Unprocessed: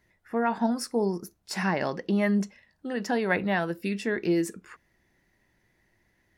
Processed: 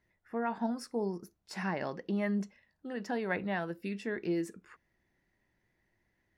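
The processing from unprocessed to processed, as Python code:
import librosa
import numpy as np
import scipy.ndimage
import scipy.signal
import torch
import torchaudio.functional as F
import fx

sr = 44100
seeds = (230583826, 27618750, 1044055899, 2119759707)

y = fx.high_shelf(x, sr, hz=5100.0, db=-7.0)
y = y * 10.0 ** (-7.5 / 20.0)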